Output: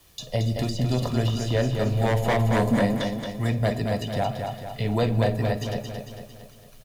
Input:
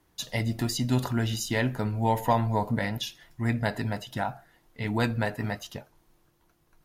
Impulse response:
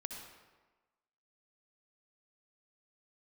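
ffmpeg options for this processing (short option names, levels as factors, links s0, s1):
-filter_complex "[0:a]highshelf=f=2200:t=q:w=1.5:g=7.5,aecho=1:1:1.7:0.46,acrossover=split=7800[s0][s1];[s1]acompressor=threshold=0.00708:ratio=4:attack=1:release=60[s2];[s0][s2]amix=inputs=2:normalize=0,asettb=1/sr,asplit=3[s3][s4][s5];[s3]atrim=end=2.524[s6];[s4]atrim=start=2.52:end=3,asetpts=PTS-STARTPTS,afade=t=in:d=0.004:c=qsin,afade=t=out:st=0.476:d=0.004:c=qsin,equalizer=f=250:t=o:w=1:g=12,equalizer=f=2000:t=o:w=1:g=4,equalizer=f=8000:t=o:w=1:g=12[s7];[s5]atrim=start=2.996[s8];[s6][s7]acrossfade=d=0.004:c1=hsin:c2=qsin[s9];[s9][s8]acrossfade=d=0.004:c1=qsin:c2=hsin,acrossover=split=290|920[s10][s11][s12];[s10]alimiter=level_in=1.5:limit=0.0631:level=0:latency=1,volume=0.668[s13];[s11]aeval=exprs='0.0596*(abs(mod(val(0)/0.0596+3,4)-2)-1)':c=same[s14];[s12]acompressor=threshold=0.00562:ratio=6[s15];[s13][s14][s15]amix=inputs=3:normalize=0,acrusher=bits=10:mix=0:aa=0.000001,aecho=1:1:225|450|675|900|1125|1350|1575:0.531|0.276|0.144|0.0746|0.0388|0.0202|0.0105,asplit=2[s16][s17];[1:a]atrim=start_sample=2205,adelay=53[s18];[s17][s18]afir=irnorm=-1:irlink=0,volume=0.2[s19];[s16][s19]amix=inputs=2:normalize=0,volume=2.11"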